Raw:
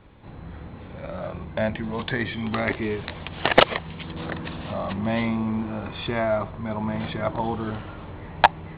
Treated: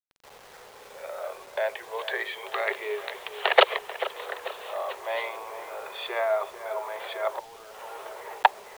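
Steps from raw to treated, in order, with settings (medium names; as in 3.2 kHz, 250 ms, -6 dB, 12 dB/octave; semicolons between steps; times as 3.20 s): filtered feedback delay 439 ms, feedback 51%, low-pass 1.9 kHz, level -12 dB; 7.39–8.45 s: compressor with a negative ratio -38 dBFS, ratio -1; steep high-pass 390 Hz 96 dB/octave; bit crusher 8-bit; trim -1.5 dB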